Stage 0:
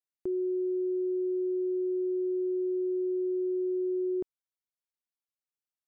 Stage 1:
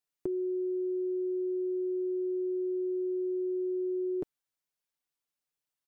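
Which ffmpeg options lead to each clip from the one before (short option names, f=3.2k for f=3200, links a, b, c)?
-af "aecho=1:1:6.8:0.47,volume=3.5dB"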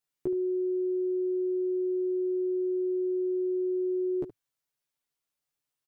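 -af "equalizer=f=110:w=2.5:g=6,aecho=1:1:14|72:0.708|0.251"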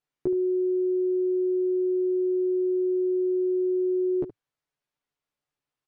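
-af "aemphasis=mode=reproduction:type=75fm,volume=3.5dB"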